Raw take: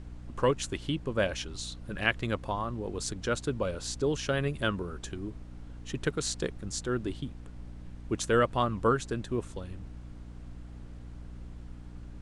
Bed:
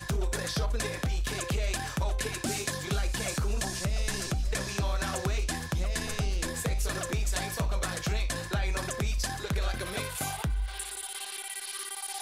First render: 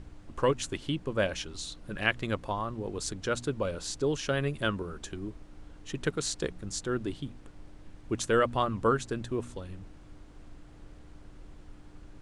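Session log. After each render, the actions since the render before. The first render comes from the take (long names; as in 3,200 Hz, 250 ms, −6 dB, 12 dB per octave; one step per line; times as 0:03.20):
hum removal 60 Hz, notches 4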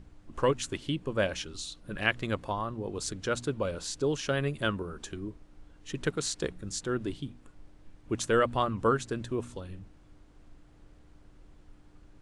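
noise reduction from a noise print 6 dB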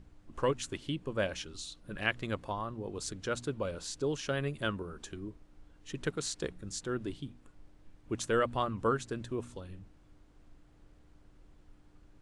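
level −4 dB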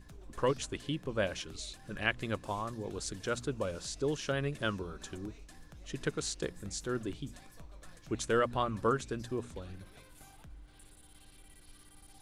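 mix in bed −23.5 dB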